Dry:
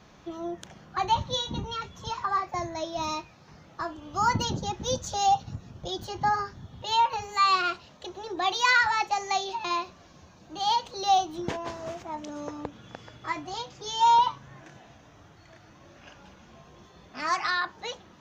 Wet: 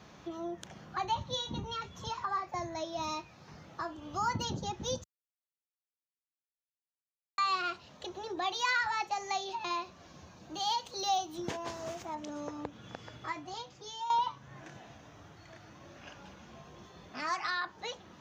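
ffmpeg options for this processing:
ffmpeg -i in.wav -filter_complex "[0:a]asettb=1/sr,asplit=3[link_01][link_02][link_03];[link_01]atrim=end=10.544[link_04];[link_02]atrim=start=10.54:end=12.15,asetpts=PTS-STARTPTS,afade=type=in:duration=0.004:curve=qsin,afade=type=out:start_time=1.606:duration=0.004:curve=qsin,aemphasis=mode=production:type=cd[link_05];[link_03]atrim=start=12.146[link_06];[link_04][link_05]acrossfade=duration=0.004:curve1=hsin:curve2=qsin[link_07];[link_07][link_06]acrossfade=duration=0.004:curve1=qsin:curve2=hsin,asplit=4[link_08][link_09][link_10][link_11];[link_08]atrim=end=5.04,asetpts=PTS-STARTPTS,afade=type=out:start_time=5.036:duration=0.004:curve=hsin[link_12];[link_09]atrim=start=5.04:end=7.38,asetpts=PTS-STARTPTS,volume=0[link_13];[link_10]atrim=start=7.38:end=14.1,asetpts=PTS-STARTPTS,afade=type=in:duration=0.004:curve=hsin,afade=type=out:start_time=5.75:duration=0.97:silence=0.16788[link_14];[link_11]atrim=start=14.1,asetpts=PTS-STARTPTS,afade=type=in:duration=0.004:curve=hsin:silence=0.16788[link_15];[link_12][link_13][link_14][link_15]concat=n=4:v=0:a=1,highpass=61,acompressor=threshold=-43dB:ratio=1.5" out.wav

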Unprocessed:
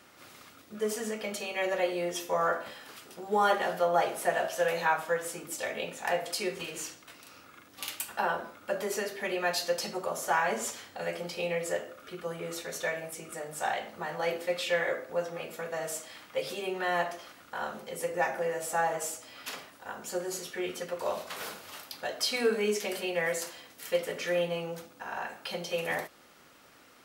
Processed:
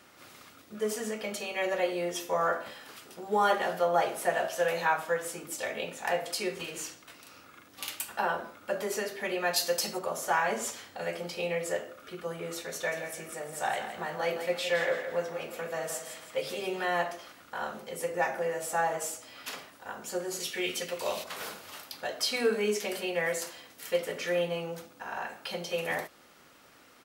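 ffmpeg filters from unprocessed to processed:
ffmpeg -i in.wav -filter_complex "[0:a]asettb=1/sr,asplit=3[link_01][link_02][link_03];[link_01]atrim=end=9.564[link_04];[link_02]atrim=start=9.56:end=9.99,asetpts=PTS-STARTPTS,afade=type=in:duration=0.004:curve=qsin,afade=type=out:start_time=0.426:duration=0.004:curve=qsin,highshelf=frequency=6600:gain=11[link_05];[link_03]atrim=start=9.986[link_06];[link_04][link_05]acrossfade=duration=0.004:curve1=hsin:curve2=qsin[link_07];[link_07][link_06]acrossfade=duration=0.004:curve1=qsin:curve2=hsin,asplit=3[link_08][link_09][link_10];[link_08]afade=type=out:start_time=12.91:duration=0.02[link_11];[link_09]aecho=1:1:166|332|498|664:0.355|0.135|0.0512|0.0195,afade=type=in:start_time=12.91:duration=0.02,afade=type=out:start_time=16.85:duration=0.02[link_12];[link_10]afade=type=in:start_time=16.85:duration=0.02[link_13];[link_11][link_12][link_13]amix=inputs=3:normalize=0,asettb=1/sr,asplit=3[link_14][link_15][link_16];[link_14]atrim=end=20.404[link_17];[link_15]atrim=start=20.4:end=21.24,asetpts=PTS-STARTPTS,afade=type=in:duration=0.004:curve=qsin,afade=type=out:start_time=0.836:duration=0.004:curve=qsin,highshelf=frequency=1900:width_type=q:width=1.5:gain=7[link_18];[link_16]atrim=start=21.236[link_19];[link_17][link_18]acrossfade=duration=0.004:curve1=hsin:curve2=qsin[link_20];[link_20][link_19]acrossfade=duration=0.004:curve1=qsin:curve2=hsin" out.wav

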